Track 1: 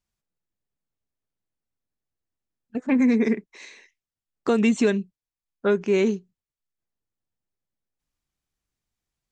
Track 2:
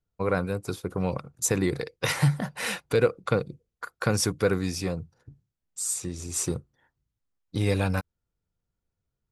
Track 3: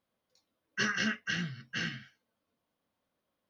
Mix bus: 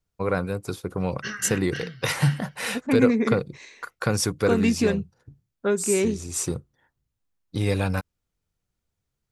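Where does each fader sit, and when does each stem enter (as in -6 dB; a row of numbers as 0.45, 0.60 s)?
-2.0, +1.0, -2.5 dB; 0.00, 0.00, 0.45 s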